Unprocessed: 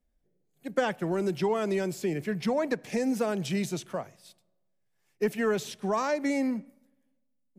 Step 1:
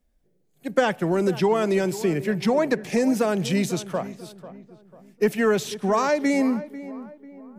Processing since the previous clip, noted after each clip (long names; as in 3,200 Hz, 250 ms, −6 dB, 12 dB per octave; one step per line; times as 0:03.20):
feedback echo with a low-pass in the loop 494 ms, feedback 42%, low-pass 1,600 Hz, level −14.5 dB
level +6.5 dB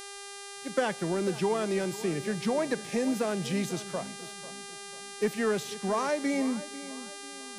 hum with harmonics 400 Hz, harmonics 28, −36 dBFS −2 dB per octave
level −7.5 dB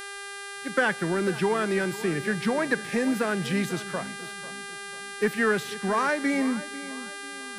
graphic EQ with 15 bands 630 Hz −4 dB, 1,600 Hz +9 dB, 6,300 Hz −6 dB
level +3.5 dB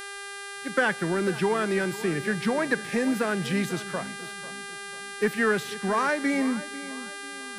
no processing that can be heard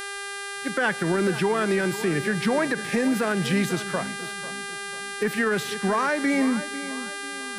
brickwall limiter −19 dBFS, peak gain reduction 8 dB
level +4.5 dB